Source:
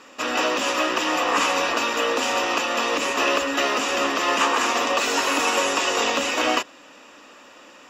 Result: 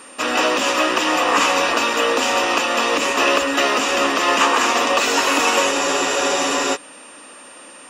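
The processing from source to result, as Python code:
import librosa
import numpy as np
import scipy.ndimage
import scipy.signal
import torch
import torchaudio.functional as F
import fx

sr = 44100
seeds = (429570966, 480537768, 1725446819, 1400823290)

y = x + 10.0 ** (-47.0 / 20.0) * np.sin(2.0 * np.pi * 9000.0 * np.arange(len(x)) / sr)
y = fx.spec_freeze(y, sr, seeds[0], at_s=5.74, hold_s=1.01)
y = y * 10.0 ** (4.5 / 20.0)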